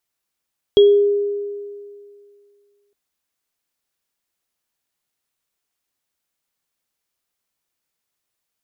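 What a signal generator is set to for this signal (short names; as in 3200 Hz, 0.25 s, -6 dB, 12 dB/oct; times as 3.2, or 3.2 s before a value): sine partials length 2.16 s, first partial 407 Hz, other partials 3300 Hz, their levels -11.5 dB, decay 2.21 s, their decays 0.32 s, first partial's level -5.5 dB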